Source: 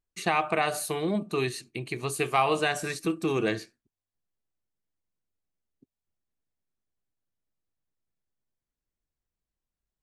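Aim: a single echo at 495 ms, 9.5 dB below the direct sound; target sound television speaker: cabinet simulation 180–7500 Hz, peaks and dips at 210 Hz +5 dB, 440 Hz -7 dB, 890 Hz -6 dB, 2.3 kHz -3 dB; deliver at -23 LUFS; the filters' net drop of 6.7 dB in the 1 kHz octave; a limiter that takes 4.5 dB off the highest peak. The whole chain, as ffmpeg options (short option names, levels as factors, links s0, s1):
-af "equalizer=f=1000:t=o:g=-6,alimiter=limit=0.133:level=0:latency=1,highpass=f=180:w=0.5412,highpass=f=180:w=1.3066,equalizer=f=210:t=q:w=4:g=5,equalizer=f=440:t=q:w=4:g=-7,equalizer=f=890:t=q:w=4:g=-6,equalizer=f=2300:t=q:w=4:g=-3,lowpass=f=7500:w=0.5412,lowpass=f=7500:w=1.3066,aecho=1:1:495:0.335,volume=2.99"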